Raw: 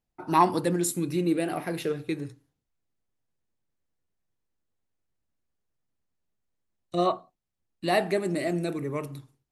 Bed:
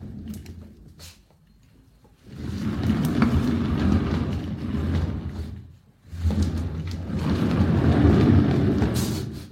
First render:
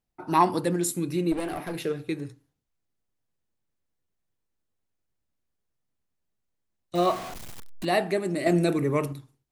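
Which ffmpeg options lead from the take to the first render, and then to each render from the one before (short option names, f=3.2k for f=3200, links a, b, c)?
-filter_complex "[0:a]asplit=3[a][b][c];[a]afade=t=out:st=1.31:d=0.02[d];[b]aeval=exprs='clip(val(0),-1,0.0282)':c=same,afade=t=in:st=1.31:d=0.02,afade=t=out:st=1.74:d=0.02[e];[c]afade=t=in:st=1.74:d=0.02[f];[d][e][f]amix=inputs=3:normalize=0,asettb=1/sr,asplit=3[g][h][i];[g]atrim=end=6.954[j];[h]atrim=start=6.95:end=7.85,asetpts=PTS-STARTPTS,afade=t=in:d=0.004:c=qsin,afade=t=out:st=0.896:d=0.004:c=qsin,aeval=exprs='val(0)+0.5*0.0266*sgn(val(0))':c=same[k];[i]atrim=start=7.846[l];[j][k]acrossfade=d=0.004:c1=hsin:c2=qsin[m];[m][l]acrossfade=d=0.004:c1=qsin:c2=hsin,asettb=1/sr,asplit=3[n][o][p];[n]atrim=end=8.464[q];[o]atrim=start=8.46:end=9.13,asetpts=PTS-STARTPTS,afade=t=in:d=0.004:c=qsin,afade=t=out:st=0.666:d=0.004:c=qsin,acontrast=69[r];[p]atrim=start=9.126[s];[q][r]acrossfade=d=0.004:c1=hsin:c2=qsin[t];[t][s]acrossfade=d=0.004:c1=qsin:c2=hsin"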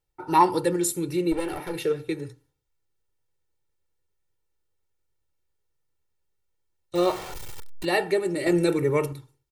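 -af "aecho=1:1:2.2:0.78"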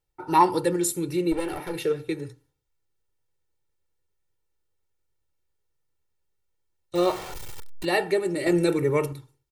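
-af anull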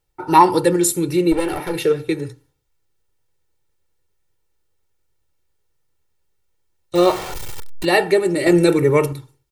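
-af "volume=8dB,alimiter=limit=-1dB:level=0:latency=1"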